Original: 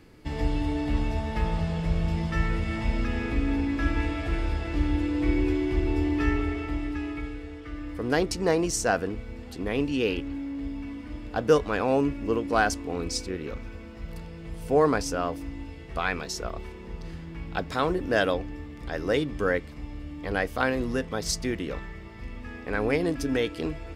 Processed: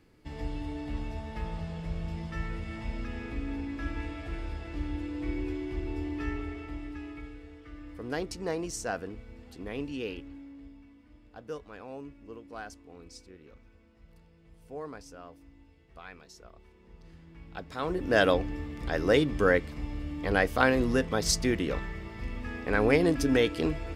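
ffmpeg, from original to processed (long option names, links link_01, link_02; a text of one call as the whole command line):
ffmpeg -i in.wav -af "volume=12dB,afade=type=out:start_time=9.9:duration=0.99:silence=0.316228,afade=type=in:start_time=16.6:duration=1.16:silence=0.354813,afade=type=in:start_time=17.76:duration=0.54:silence=0.251189" out.wav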